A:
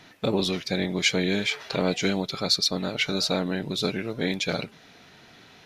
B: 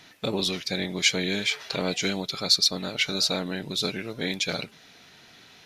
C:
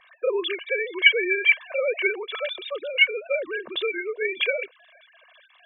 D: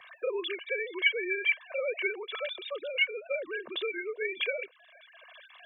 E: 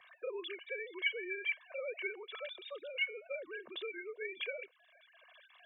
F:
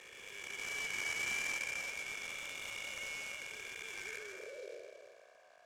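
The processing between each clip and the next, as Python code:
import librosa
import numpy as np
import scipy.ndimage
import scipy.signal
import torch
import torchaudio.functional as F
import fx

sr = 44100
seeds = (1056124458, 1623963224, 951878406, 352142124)

y1 = fx.high_shelf(x, sr, hz=2200.0, db=8.0)
y1 = y1 * librosa.db_to_amplitude(-4.0)
y2 = fx.sine_speech(y1, sr)
y2 = y2 + 0.96 * np.pad(y2, (int(1.8 * sr / 1000.0), 0))[:len(y2)]
y2 = y2 * librosa.db_to_amplitude(-1.0)
y3 = fx.band_squash(y2, sr, depth_pct=40)
y3 = y3 * librosa.db_to_amplitude(-7.5)
y4 = fx.comb_fb(y3, sr, f0_hz=740.0, decay_s=0.41, harmonics='all', damping=0.0, mix_pct=40)
y4 = y4 * librosa.db_to_amplitude(-4.5)
y5 = fx.spec_blur(y4, sr, span_ms=821.0)
y5 = fx.filter_sweep_bandpass(y5, sr, from_hz=3000.0, to_hz=550.0, start_s=3.89, end_s=4.64, q=1.4)
y5 = fx.noise_mod_delay(y5, sr, seeds[0], noise_hz=3800.0, depth_ms=0.032)
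y5 = y5 * librosa.db_to_amplitude(12.5)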